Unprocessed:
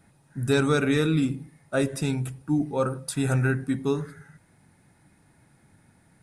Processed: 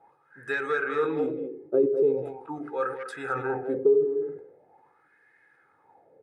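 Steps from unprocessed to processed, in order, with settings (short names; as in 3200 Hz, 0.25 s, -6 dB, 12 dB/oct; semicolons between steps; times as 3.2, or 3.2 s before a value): bell 240 Hz +7 dB 2.9 oct; notches 60/120/180/240/300/360/420/480 Hz; comb 2.4 ms, depth 55%; speakerphone echo 0.2 s, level -9 dB; wah 0.42 Hz 360–1800 Hz, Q 6.2; compressor 4:1, threshold -35 dBFS, peak gain reduction 14 dB; bell 480 Hz +9.5 dB 0.64 oct; sustainer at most 89 dB/s; gain +8.5 dB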